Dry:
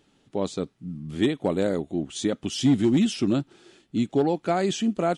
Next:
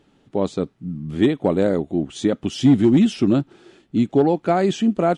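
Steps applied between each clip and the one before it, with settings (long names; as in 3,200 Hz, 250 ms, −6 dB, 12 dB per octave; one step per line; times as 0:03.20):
high-shelf EQ 3,000 Hz −10 dB
level +6 dB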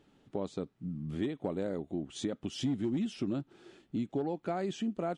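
downward compressor 2.5 to 1, threshold −28 dBFS, peak gain reduction 12 dB
level −7 dB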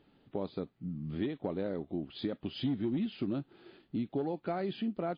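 MP3 24 kbit/s 11,025 Hz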